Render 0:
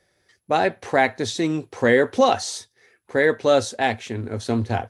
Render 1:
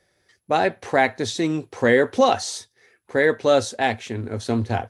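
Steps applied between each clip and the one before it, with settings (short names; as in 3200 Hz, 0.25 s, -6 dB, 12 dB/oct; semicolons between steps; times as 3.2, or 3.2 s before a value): nothing audible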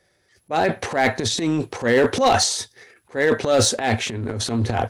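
transient shaper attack -9 dB, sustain +11 dB; hard clip -11.5 dBFS, distortion -17 dB; gain +1.5 dB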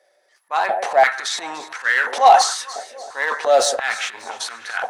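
echo with dull and thin repeats by turns 0.147 s, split 2000 Hz, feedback 67%, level -12 dB; stepped high-pass 2.9 Hz 610–1500 Hz; gain -1.5 dB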